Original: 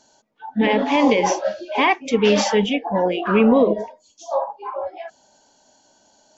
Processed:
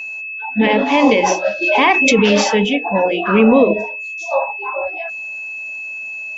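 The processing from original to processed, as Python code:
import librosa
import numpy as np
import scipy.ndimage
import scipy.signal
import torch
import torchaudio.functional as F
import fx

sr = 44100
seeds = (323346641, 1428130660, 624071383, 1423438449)

y = x + 10.0 ** (-29.0 / 20.0) * np.sin(2.0 * np.pi * 2600.0 * np.arange(len(x)) / sr)
y = fx.hum_notches(y, sr, base_hz=60, count=7)
y = fx.pre_swell(y, sr, db_per_s=26.0, at=(1.61, 2.3), fade=0.02)
y = y * 10.0 ** (4.0 / 20.0)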